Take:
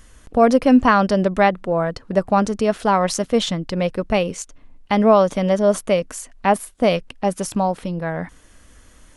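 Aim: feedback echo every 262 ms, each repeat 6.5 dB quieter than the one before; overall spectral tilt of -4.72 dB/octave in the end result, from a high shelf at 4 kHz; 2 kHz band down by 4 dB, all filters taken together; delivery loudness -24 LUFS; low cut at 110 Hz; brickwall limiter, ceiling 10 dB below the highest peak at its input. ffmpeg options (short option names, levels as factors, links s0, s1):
-af "highpass=110,equalizer=f=2000:t=o:g=-7,highshelf=f=4000:g=7.5,alimiter=limit=0.237:level=0:latency=1,aecho=1:1:262|524|786|1048|1310|1572:0.473|0.222|0.105|0.0491|0.0231|0.0109,volume=0.794"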